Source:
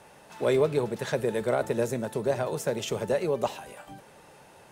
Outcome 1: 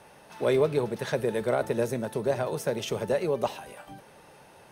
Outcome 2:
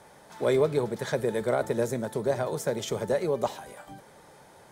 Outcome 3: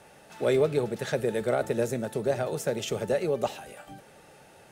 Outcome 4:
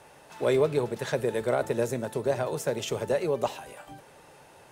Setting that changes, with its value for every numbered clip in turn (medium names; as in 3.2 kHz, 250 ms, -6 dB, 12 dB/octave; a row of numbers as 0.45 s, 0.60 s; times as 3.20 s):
band-stop, frequency: 7.3 kHz, 2.7 kHz, 1 kHz, 200 Hz